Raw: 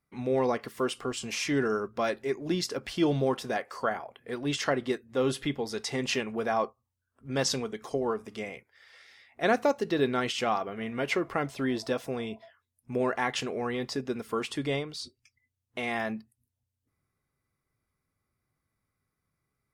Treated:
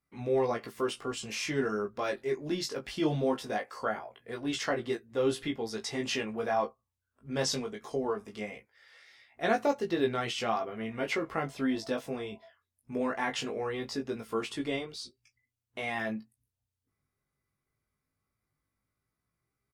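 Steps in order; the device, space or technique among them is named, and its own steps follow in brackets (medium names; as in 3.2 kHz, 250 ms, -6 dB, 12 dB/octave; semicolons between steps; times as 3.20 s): double-tracked vocal (doubling 15 ms -12 dB; chorus 0.2 Hz, delay 17.5 ms, depth 2.4 ms)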